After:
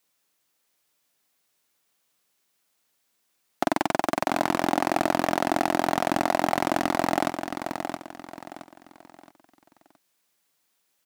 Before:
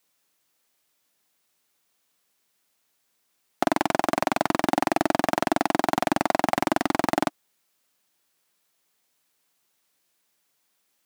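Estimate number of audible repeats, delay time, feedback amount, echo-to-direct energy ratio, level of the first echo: 3, 0.67 s, 34%, -6.5 dB, -7.0 dB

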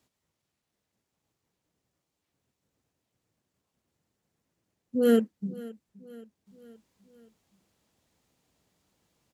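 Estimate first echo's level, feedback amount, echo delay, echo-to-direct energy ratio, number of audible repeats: -20.0 dB, 53%, 0.523 s, -18.5 dB, 3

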